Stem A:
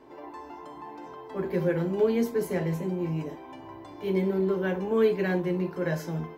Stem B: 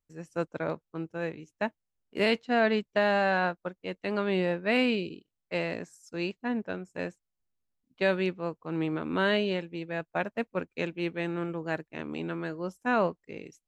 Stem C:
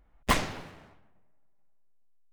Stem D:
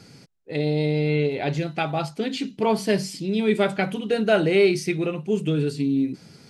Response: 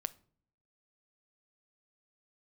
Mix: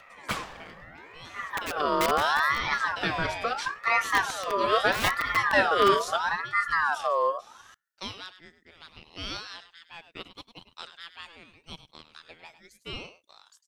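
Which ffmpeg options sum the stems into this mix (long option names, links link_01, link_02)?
-filter_complex "[0:a]adynamicequalizer=threshold=0.0141:dfrequency=490:dqfactor=3.3:tfrequency=490:tqfactor=3.3:attack=5:release=100:ratio=0.375:range=2:mode=boostabove:tftype=bell,acompressor=mode=upward:threshold=-40dB:ratio=2.5,aeval=exprs='(mod(7.08*val(0)+1,2)-1)/7.08':channel_layout=same,volume=-5dB,asplit=2[link_01][link_02];[link_02]volume=-12.5dB[link_03];[1:a]highpass=frequency=1000:width=0.5412,highpass=frequency=1000:width=1.3066,highshelf=frequency=2600:gain=12,volume=-8.5dB,asplit=4[link_04][link_05][link_06][link_07];[link_05]volume=-12dB[link_08];[link_06]volume=-10.5dB[link_09];[2:a]volume=-6.5dB,asplit=2[link_10][link_11];[link_11]volume=-9dB[link_12];[3:a]adelay=1250,volume=-2dB,asplit=2[link_13][link_14];[link_14]volume=-13.5dB[link_15];[link_07]apad=whole_len=281083[link_16];[link_01][link_16]sidechaincompress=threshold=-41dB:ratio=8:attack=6.4:release=146[link_17];[4:a]atrim=start_sample=2205[link_18];[link_03][link_08][link_12][link_15]amix=inputs=4:normalize=0[link_19];[link_19][link_18]afir=irnorm=-1:irlink=0[link_20];[link_09]aecho=0:1:102:1[link_21];[link_17][link_04][link_10][link_13][link_20][link_21]amix=inputs=6:normalize=0,aeval=exprs='val(0)*sin(2*PI*1200*n/s+1200*0.35/0.76*sin(2*PI*0.76*n/s))':channel_layout=same"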